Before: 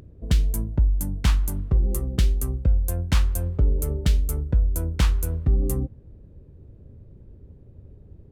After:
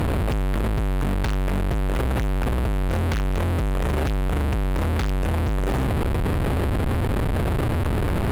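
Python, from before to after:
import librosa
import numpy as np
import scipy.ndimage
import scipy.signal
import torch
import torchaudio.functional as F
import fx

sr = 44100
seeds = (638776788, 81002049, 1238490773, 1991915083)

y = fx.delta_mod(x, sr, bps=16000, step_db=-33.0)
y = fx.fuzz(y, sr, gain_db=47.0, gate_db=-47.0)
y = y * librosa.db_to_amplitude(-8.0)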